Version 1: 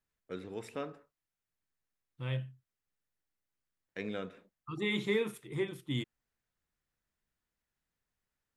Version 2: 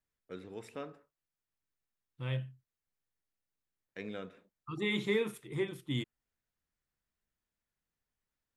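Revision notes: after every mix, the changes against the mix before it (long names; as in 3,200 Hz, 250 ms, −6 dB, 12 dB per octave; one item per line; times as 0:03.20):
first voice −3.5 dB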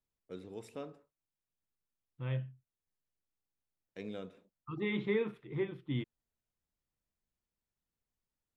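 first voice: add parametric band 1,700 Hz −8.5 dB 1.2 octaves
second voice: add high-frequency loss of the air 370 metres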